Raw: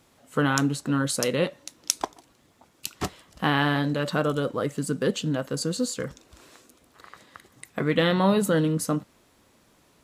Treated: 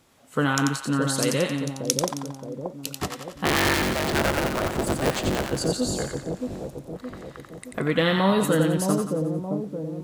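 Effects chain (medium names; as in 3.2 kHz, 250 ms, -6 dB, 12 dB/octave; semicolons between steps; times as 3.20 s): 3.45–5.51 s: cycle switcher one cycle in 3, inverted; two-band feedback delay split 790 Hz, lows 620 ms, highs 89 ms, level -4 dB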